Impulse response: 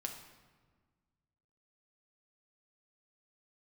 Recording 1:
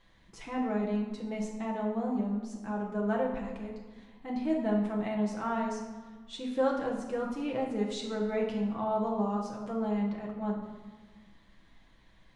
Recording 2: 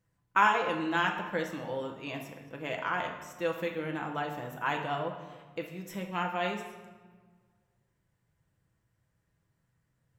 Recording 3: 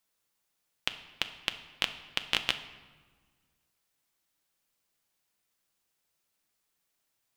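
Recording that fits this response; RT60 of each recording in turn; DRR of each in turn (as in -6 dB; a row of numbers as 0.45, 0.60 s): 2; 1.5, 1.5, 1.5 s; -2.0, 2.0, 8.0 dB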